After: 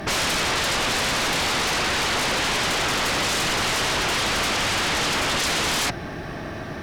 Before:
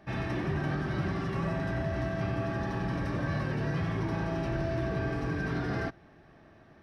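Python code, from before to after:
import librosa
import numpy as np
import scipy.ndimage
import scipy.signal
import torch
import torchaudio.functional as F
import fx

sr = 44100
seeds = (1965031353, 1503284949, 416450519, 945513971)

y = fx.high_shelf(x, sr, hz=3500.0, db=8.5)
y = fx.fold_sine(y, sr, drive_db=20, ceiling_db=-20.0)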